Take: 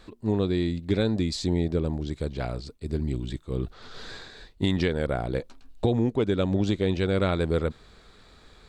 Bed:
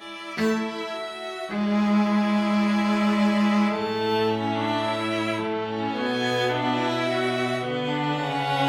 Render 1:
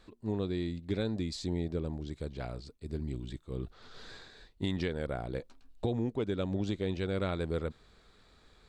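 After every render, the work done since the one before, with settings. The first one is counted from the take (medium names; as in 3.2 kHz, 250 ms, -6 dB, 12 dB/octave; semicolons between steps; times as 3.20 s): trim -8.5 dB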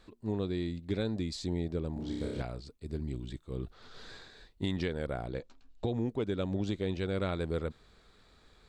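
1.93–2.42 s: flutter echo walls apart 5.2 m, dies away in 1.2 s; 5.29–5.96 s: elliptic low-pass 7.5 kHz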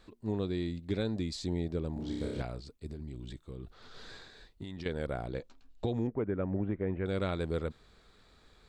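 2.92–4.86 s: compression, threshold -38 dBFS; 6.07–7.06 s: steep low-pass 2.1 kHz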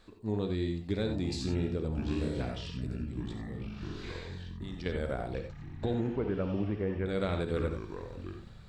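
ever faster or slower copies 697 ms, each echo -6 st, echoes 3, each echo -6 dB; gated-style reverb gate 110 ms rising, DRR 5 dB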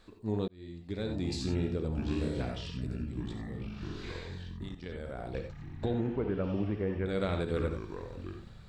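0.48–1.30 s: fade in; 4.69–5.34 s: level held to a coarse grid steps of 10 dB; 5.88–6.44 s: distance through air 92 m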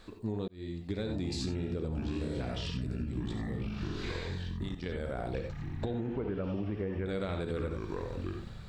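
in parallel at -1 dB: peak limiter -27 dBFS, peak gain reduction 7.5 dB; on the sum: compression, threshold -31 dBFS, peak gain reduction 8 dB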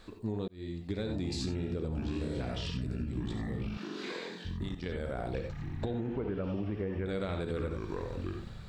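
3.77–4.45 s: steep high-pass 200 Hz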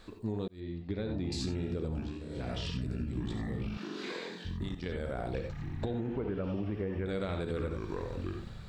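0.60–1.32 s: distance through air 190 m; 1.93–2.51 s: dip -8.5 dB, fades 0.26 s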